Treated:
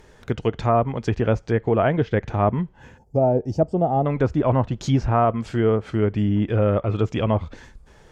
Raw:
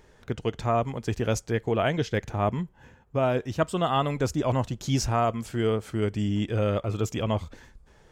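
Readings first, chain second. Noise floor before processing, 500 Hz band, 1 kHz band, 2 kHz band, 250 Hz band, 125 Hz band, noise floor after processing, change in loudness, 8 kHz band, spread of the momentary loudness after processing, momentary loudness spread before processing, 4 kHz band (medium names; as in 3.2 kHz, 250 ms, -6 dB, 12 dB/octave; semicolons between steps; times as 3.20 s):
-57 dBFS, +6.0 dB, +5.0 dB, +2.0 dB, +6.0 dB, +6.0 dB, -52 dBFS, +5.5 dB, no reading, 5 LU, 6 LU, -3.5 dB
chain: low-pass that closes with the level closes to 1.6 kHz, closed at -22 dBFS; time-frequency box 2.98–4.06 s, 920–4400 Hz -19 dB; trim +6 dB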